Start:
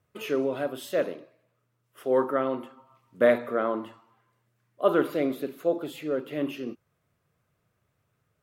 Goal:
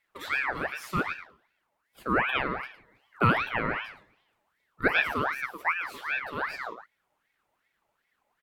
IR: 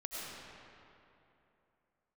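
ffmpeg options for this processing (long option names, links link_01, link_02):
-filter_complex "[0:a]asplit=2[link_01][link_02];[link_02]adelay=110.8,volume=-9dB,highshelf=frequency=4000:gain=-2.49[link_03];[link_01][link_03]amix=inputs=2:normalize=0,aeval=exprs='val(0)*sin(2*PI*1400*n/s+1400*0.5/2.6*sin(2*PI*2.6*n/s))':channel_layout=same"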